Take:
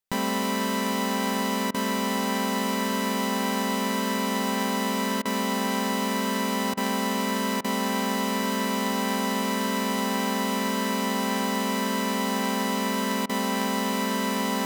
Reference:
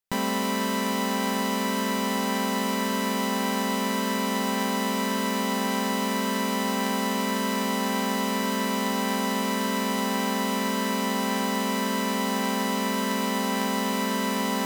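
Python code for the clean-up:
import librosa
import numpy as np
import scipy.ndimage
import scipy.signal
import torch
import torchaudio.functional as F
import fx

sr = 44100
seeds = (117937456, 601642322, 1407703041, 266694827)

y = fx.fix_interpolate(x, sr, at_s=(1.71, 5.22, 6.74, 7.61, 13.26), length_ms=32.0)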